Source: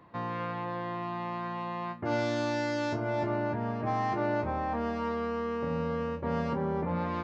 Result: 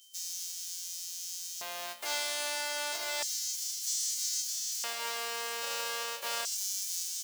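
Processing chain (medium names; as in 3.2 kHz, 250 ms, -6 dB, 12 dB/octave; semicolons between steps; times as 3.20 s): formants flattened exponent 0.1; LFO high-pass square 0.31 Hz 570–6100 Hz; whistle 3.1 kHz -54 dBFS; trim -5 dB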